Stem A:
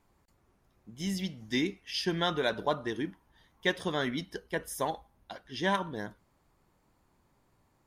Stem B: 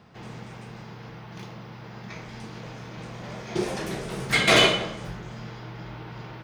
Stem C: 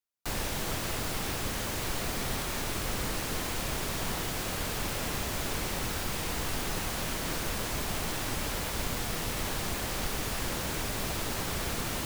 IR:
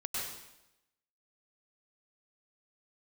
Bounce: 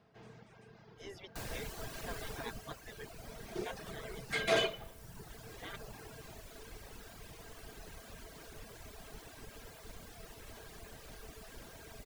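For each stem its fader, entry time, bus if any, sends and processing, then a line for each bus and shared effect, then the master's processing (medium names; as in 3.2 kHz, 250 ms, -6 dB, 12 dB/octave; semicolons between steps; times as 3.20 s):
-3.0 dB, 0.00 s, send -15 dB, spectral gate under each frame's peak -15 dB weak; low-pass 1.1 kHz 6 dB/octave
-14.5 dB, 0.00 s, no send, none
2.30 s -12.5 dB -> 2.83 s -19.5 dB, 1.10 s, send -8.5 dB, octave divider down 2 oct, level +1 dB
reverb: on, RT60 0.90 s, pre-delay 93 ms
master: reverb removal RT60 1.5 s; small resonant body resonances 440/660/1600 Hz, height 11 dB, ringing for 100 ms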